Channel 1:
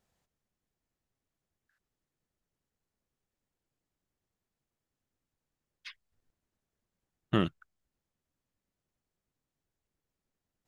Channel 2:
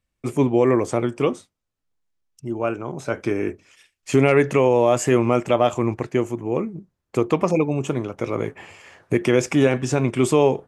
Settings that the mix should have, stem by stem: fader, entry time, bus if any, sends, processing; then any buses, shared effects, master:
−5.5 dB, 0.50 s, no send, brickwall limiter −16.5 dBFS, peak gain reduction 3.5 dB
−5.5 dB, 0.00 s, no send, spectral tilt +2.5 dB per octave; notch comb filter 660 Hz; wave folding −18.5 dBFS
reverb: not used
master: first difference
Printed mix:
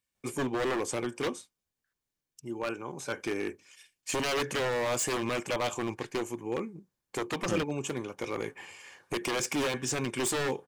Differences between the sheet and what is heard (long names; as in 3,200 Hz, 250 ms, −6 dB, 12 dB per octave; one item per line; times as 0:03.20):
stem 1: entry 0.50 s → 0.15 s
master: missing first difference